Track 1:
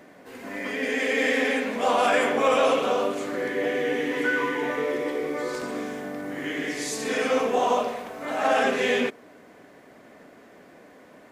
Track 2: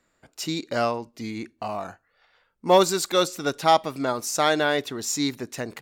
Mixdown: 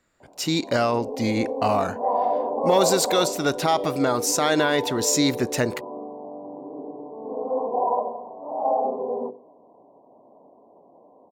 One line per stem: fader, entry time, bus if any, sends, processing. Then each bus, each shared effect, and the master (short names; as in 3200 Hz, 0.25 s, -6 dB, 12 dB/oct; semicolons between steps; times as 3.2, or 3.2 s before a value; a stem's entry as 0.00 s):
+3.0 dB, 0.20 s, no send, steep low-pass 1000 Hz 96 dB/oct; tilt +4.5 dB/oct; notches 50/100/150/200/250/300/350/400/450/500 Hz
-0.5 dB, 0.00 s, no send, AGC gain up to 9.5 dB; limiter -11 dBFS, peak gain reduction 9.5 dB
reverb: off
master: bell 84 Hz +3.5 dB 1.3 oct